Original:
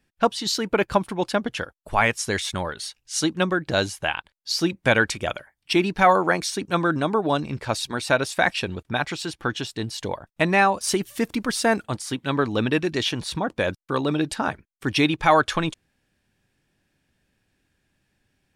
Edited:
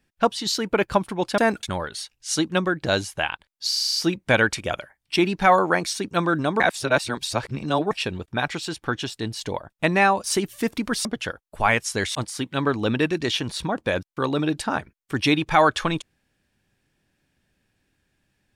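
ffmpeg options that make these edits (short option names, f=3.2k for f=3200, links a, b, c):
-filter_complex "[0:a]asplit=14[a][b][c][d][e][f][g][h][i][j][k][l][m][n];[a]atrim=end=1.382[o];[b]atrim=start=11.618:end=11.872[p];[c]atrim=start=2.478:end=4.572[q];[d]atrim=start=4.528:end=4.572[r];[e]atrim=start=4.528:end=4.572[s];[f]atrim=start=4.528:end=4.572[t];[g]atrim=start=4.528:end=4.572[u];[h]atrim=start=4.528:end=4.572[v];[i]atrim=start=4.528:end=4.572[w];[j]atrim=start=4.528:end=7.172[x];[k]atrim=start=7.168:end=8.482,asetpts=PTS-STARTPTS,areverse[y];[l]atrim=start=8.478:end=11.622[z];[m]atrim=start=1.378:end=2.482[aa];[n]atrim=start=11.868[ab];[o][p]acrossfade=d=0.004:c1=hsin:c2=hsin[ac];[ac][q]acrossfade=d=0.004:c1=hsin:c2=hsin[ad];[ad][r]acrossfade=d=0.004:c1=hsin:c2=hsin[ae];[ae][s]acrossfade=d=0.004:c1=hsin:c2=hsin[af];[af][t]acrossfade=d=0.004:c1=hsin:c2=hsin[ag];[ag][u]acrossfade=d=0.004:c1=hsin:c2=hsin[ah];[ah][v]acrossfade=d=0.004:c1=hsin:c2=hsin[ai];[ai][w]acrossfade=d=0.004:c1=hsin:c2=hsin[aj];[aj][x]acrossfade=d=0.004:c1=hsin:c2=hsin[ak];[ak][y]acrossfade=d=0.004:c1=hsin:c2=hsin[al];[al][z]acrossfade=d=0.004:c1=hsin:c2=hsin[am];[am][aa]acrossfade=d=0.004:c1=hsin:c2=hsin[an];[an][ab]acrossfade=d=0.004:c1=hsin:c2=hsin"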